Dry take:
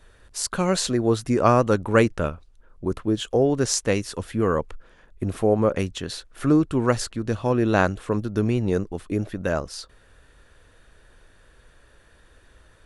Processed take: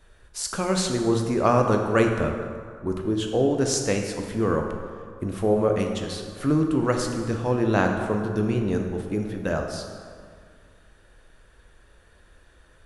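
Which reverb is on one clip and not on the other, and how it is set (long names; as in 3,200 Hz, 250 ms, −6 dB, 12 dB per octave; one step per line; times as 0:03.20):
dense smooth reverb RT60 2.1 s, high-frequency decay 0.55×, DRR 3 dB
level −3 dB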